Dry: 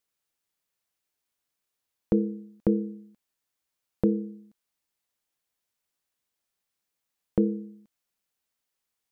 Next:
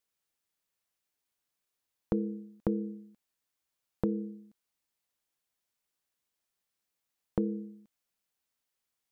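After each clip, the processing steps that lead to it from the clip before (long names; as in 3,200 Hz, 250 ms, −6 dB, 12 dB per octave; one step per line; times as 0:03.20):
downward compressor 3 to 1, threshold −25 dBFS, peak gain reduction 6 dB
level −2 dB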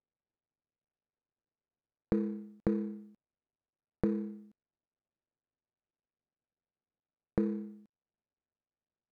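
running median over 41 samples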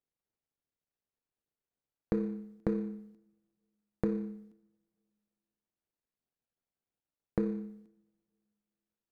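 coupled-rooms reverb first 0.73 s, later 2.5 s, from −27 dB, DRR 12 dB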